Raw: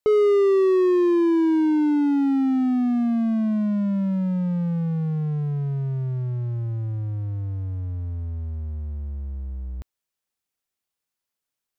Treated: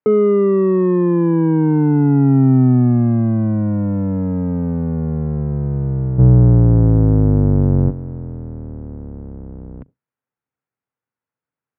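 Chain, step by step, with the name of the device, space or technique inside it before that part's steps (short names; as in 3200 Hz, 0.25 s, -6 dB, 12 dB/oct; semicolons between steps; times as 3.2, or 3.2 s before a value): 6.18–7.89 tilt -4 dB/oct; sub-octave bass pedal (octaver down 1 oct, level +3 dB; speaker cabinet 81–2200 Hz, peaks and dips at 89 Hz -4 dB, 130 Hz +7 dB, 260 Hz +6 dB, 470 Hz +6 dB, 900 Hz +4 dB, 1400 Hz +4 dB)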